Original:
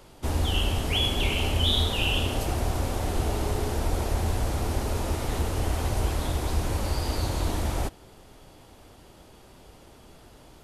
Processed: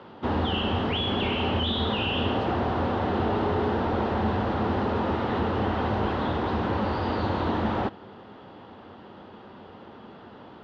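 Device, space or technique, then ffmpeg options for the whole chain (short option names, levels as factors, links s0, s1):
overdrive pedal into a guitar cabinet: -filter_complex "[0:a]asplit=2[s0][s1];[s1]highpass=f=720:p=1,volume=8.91,asoftclip=type=tanh:threshold=0.266[s2];[s0][s2]amix=inputs=2:normalize=0,lowpass=f=1200:p=1,volume=0.501,highpass=92,equalizer=f=94:t=q:w=4:g=8,equalizer=f=210:t=q:w=4:g=10,equalizer=f=640:t=q:w=4:g=-5,equalizer=f=2300:t=q:w=4:g=-8,lowpass=f=3600:w=0.5412,lowpass=f=3600:w=1.3066"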